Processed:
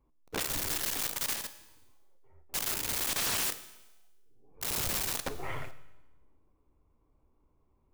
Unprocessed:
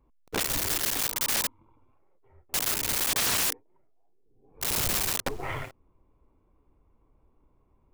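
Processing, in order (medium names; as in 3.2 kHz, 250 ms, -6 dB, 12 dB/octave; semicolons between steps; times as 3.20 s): 1.33–2.55 s: compression 1.5:1, threshold -43 dBFS, peak gain reduction 7 dB; feedback comb 76 Hz, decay 0.85 s, harmonics all, mix 50%; Schroeder reverb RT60 1.1 s, combs from 26 ms, DRR 15 dB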